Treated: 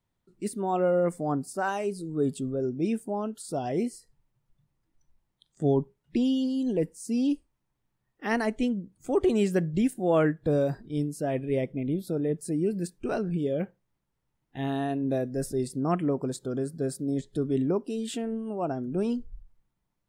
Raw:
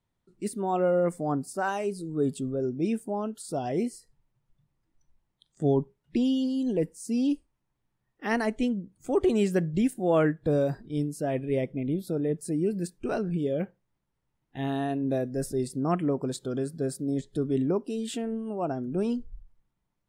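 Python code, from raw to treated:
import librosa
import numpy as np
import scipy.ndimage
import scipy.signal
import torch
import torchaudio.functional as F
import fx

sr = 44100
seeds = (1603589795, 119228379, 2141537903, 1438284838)

y = fx.peak_eq(x, sr, hz=3000.0, db=-7.5, octaves=1.0, at=(16.27, 16.8))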